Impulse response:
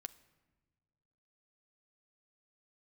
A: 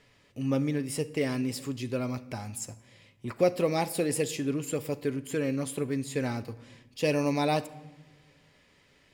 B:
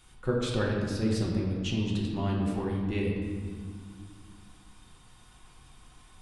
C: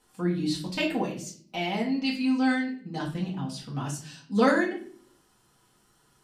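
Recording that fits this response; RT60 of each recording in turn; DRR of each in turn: A; no single decay rate, no single decay rate, 0.50 s; 11.5 dB, -3.5 dB, -6.0 dB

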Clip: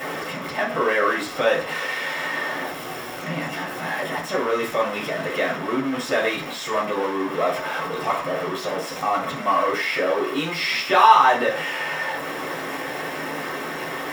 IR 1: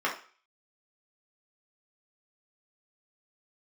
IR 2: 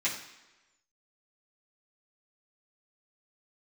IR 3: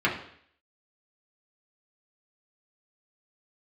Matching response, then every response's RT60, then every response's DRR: 1; 0.40 s, 1.1 s, 0.60 s; -4.0 dB, -10.0 dB, -5.5 dB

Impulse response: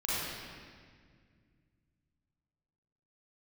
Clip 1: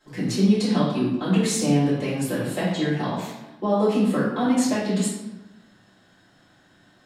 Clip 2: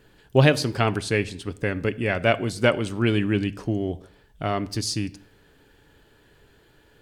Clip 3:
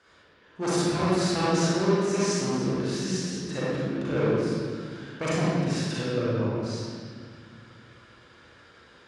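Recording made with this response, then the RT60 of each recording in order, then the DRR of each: 3; 1.0 s, no single decay rate, 1.9 s; -12.5 dB, 12.0 dB, -9.5 dB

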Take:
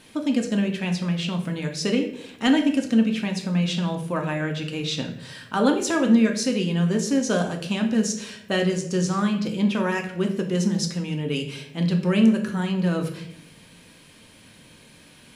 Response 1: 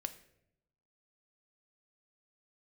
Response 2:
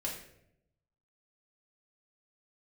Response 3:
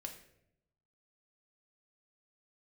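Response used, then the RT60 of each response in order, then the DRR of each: 3; 0.80 s, 0.75 s, 0.75 s; 9.0 dB, -3.5 dB, 2.5 dB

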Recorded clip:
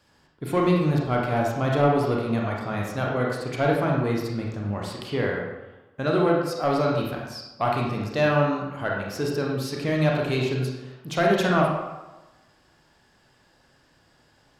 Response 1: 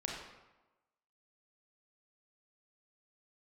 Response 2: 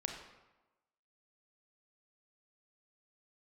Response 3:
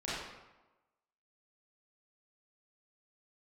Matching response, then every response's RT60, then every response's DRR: 1; 1.1 s, 1.1 s, 1.1 s; -2.0 dB, 2.5 dB, -10.0 dB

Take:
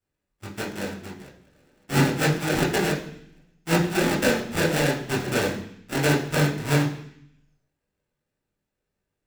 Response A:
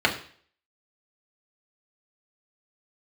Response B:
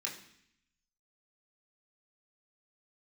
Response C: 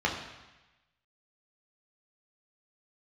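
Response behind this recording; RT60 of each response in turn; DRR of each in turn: B; 0.50 s, 0.65 s, 1.1 s; -1.5 dB, -3.5 dB, -2.0 dB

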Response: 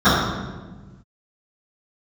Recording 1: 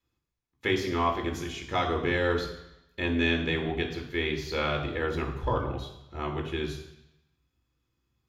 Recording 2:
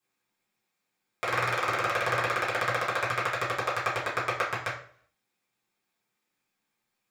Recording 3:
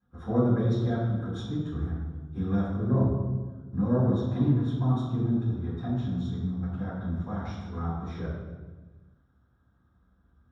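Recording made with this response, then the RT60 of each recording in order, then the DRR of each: 3; 0.85 s, 0.55 s, 1.3 s; 0.0 dB, -10.0 dB, -22.0 dB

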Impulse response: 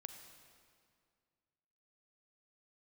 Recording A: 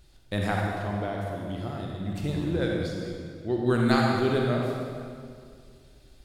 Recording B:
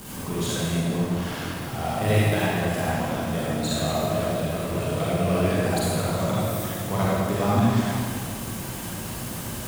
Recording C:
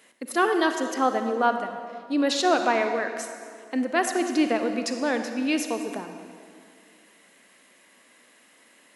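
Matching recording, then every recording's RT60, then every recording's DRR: C; 2.2 s, 2.2 s, 2.1 s; -1.5 dB, -8.5 dB, 6.5 dB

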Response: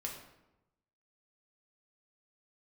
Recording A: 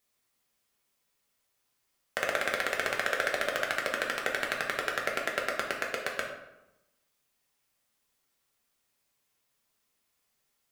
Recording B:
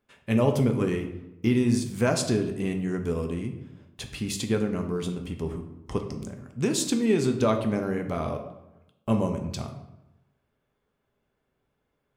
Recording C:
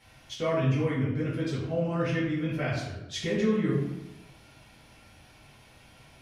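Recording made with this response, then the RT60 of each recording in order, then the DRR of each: A; 0.95 s, 0.95 s, 0.95 s; -1.0 dB, 4.0 dB, -9.0 dB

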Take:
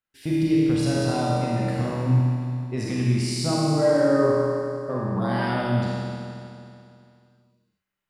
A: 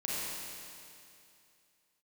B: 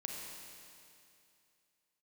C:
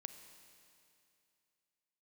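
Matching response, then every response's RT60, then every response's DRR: A; 2.6 s, 2.6 s, 2.6 s; -7.5 dB, -0.5 dB, 8.5 dB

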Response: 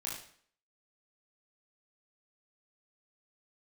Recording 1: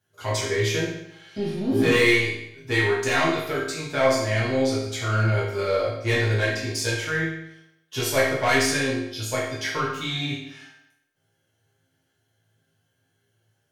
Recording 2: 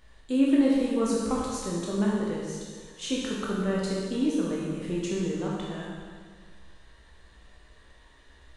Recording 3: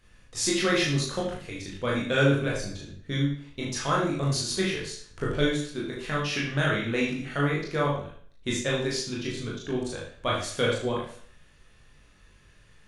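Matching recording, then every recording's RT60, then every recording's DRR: 3; 0.80 s, 1.7 s, 0.55 s; -8.5 dB, -5.0 dB, -5.0 dB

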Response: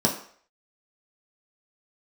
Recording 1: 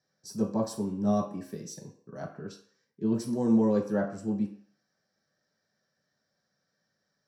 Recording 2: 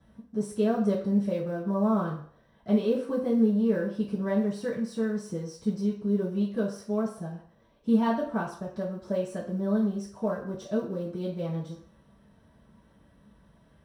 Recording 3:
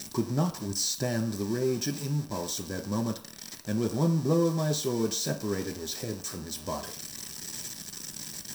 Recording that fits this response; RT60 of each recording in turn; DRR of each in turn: 1; 0.55 s, 0.55 s, 0.55 s; -2.5 dB, -11.5 dB, 2.0 dB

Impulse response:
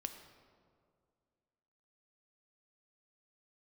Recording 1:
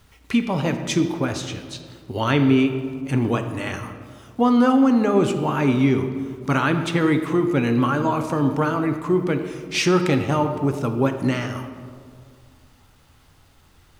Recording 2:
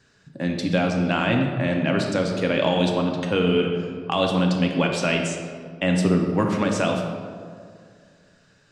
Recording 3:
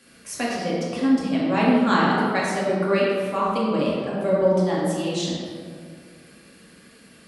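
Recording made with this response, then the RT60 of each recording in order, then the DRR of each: 1; 2.2 s, 2.2 s, 2.2 s; 6.5 dB, 1.5 dB, -7.0 dB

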